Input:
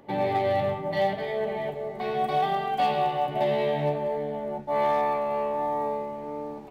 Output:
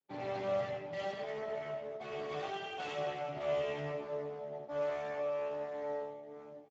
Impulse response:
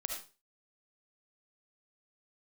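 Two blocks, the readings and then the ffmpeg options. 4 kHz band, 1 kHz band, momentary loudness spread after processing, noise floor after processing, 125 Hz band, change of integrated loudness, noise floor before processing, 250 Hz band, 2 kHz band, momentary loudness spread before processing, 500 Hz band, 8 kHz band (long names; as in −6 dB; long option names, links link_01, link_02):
−9.5 dB, −17.0 dB, 7 LU, −51 dBFS, −13.5 dB, −11.5 dB, −38 dBFS, −14.0 dB, −9.0 dB, 8 LU, −9.5 dB, can't be measured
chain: -filter_complex "[0:a]highpass=frequency=49:width=0.5412,highpass=frequency=49:width=1.3066,bandreject=frequency=950:width=11,agate=range=-33dB:threshold=-31dB:ratio=3:detection=peak,adynamicequalizer=threshold=0.00355:dfrequency=2700:dqfactor=1.7:tfrequency=2700:tqfactor=1.7:attack=5:release=100:ratio=0.375:range=3:mode=boostabove:tftype=bell,aecho=1:1:7.3:0.65,flanger=delay=7.4:depth=2.1:regen=-67:speed=0.57:shape=sinusoidal,aeval=exprs='clip(val(0),-1,0.0178)':channel_layout=same[link_01];[1:a]atrim=start_sample=2205[link_02];[link_01][link_02]afir=irnorm=-1:irlink=0,volume=-8dB" -ar 16000 -c:a libspeex -b:a 13k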